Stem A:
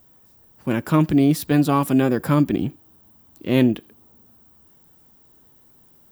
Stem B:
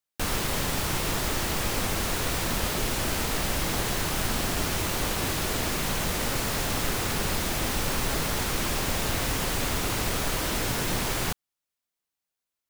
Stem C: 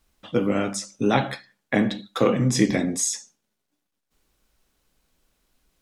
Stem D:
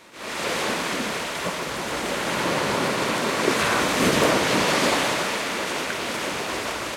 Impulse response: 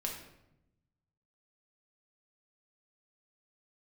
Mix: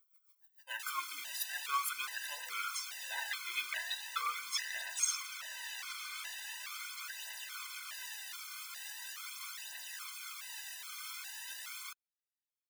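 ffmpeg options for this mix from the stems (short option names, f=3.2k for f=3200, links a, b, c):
-filter_complex "[0:a]tremolo=f=6.9:d=0.77,volume=-1.5dB,asplit=2[a][b];[b]volume=-12.5dB[c];[1:a]adelay=600,volume=-10.5dB[d];[2:a]highshelf=f=4.6k:g=-11,aecho=1:1:4.4:0.5,adelay=2000,volume=-1dB[e];[3:a]adelay=1200,volume=-13dB[f];[d][f]amix=inputs=2:normalize=0,asoftclip=type=tanh:threshold=-21dB,alimiter=level_in=5.5dB:limit=-24dB:level=0:latency=1:release=217,volume=-5.5dB,volume=0dB[g];[a][e]amix=inputs=2:normalize=0,agate=range=-19dB:threshold=-54dB:ratio=16:detection=peak,alimiter=limit=-16dB:level=0:latency=1,volume=0dB[h];[4:a]atrim=start_sample=2205[i];[c][i]afir=irnorm=-1:irlink=0[j];[g][h][j]amix=inputs=3:normalize=0,highpass=f=1.3k:w=0.5412,highpass=f=1.3k:w=1.3066,aphaser=in_gain=1:out_gain=1:delay=3.4:decay=0.49:speed=0.41:type=triangular,afftfilt=real='re*gt(sin(2*PI*1.2*pts/sr)*(1-2*mod(floor(b*sr/1024/510),2)),0)':imag='im*gt(sin(2*PI*1.2*pts/sr)*(1-2*mod(floor(b*sr/1024/510),2)),0)':win_size=1024:overlap=0.75"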